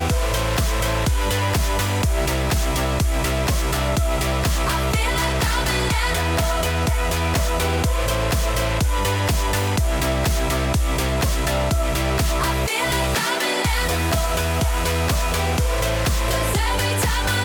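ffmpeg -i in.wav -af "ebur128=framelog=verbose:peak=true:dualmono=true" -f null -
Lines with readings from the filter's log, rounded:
Integrated loudness:
  I:         -17.9 LUFS
  Threshold: -27.9 LUFS
Loudness range:
  LRA:         0.4 LU
  Threshold: -37.9 LUFS
  LRA low:   -18.1 LUFS
  LRA high:  -17.7 LUFS
True peak:
  Peak:      -11.6 dBFS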